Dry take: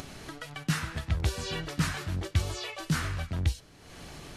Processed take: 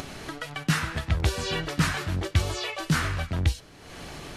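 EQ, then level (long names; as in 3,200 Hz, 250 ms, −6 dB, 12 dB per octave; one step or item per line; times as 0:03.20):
bass and treble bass −3 dB, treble −3 dB
+6.5 dB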